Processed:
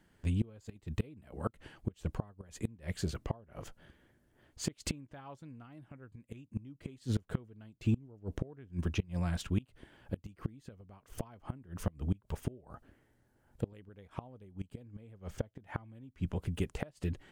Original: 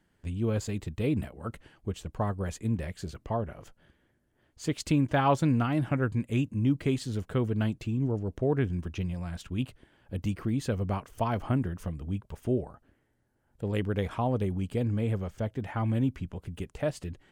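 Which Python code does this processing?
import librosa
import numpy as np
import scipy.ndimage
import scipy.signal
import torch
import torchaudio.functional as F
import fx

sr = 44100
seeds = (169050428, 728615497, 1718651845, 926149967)

y = fx.gate_flip(x, sr, shuts_db=-23.0, range_db=-28)
y = y * 10.0 ** (3.0 / 20.0)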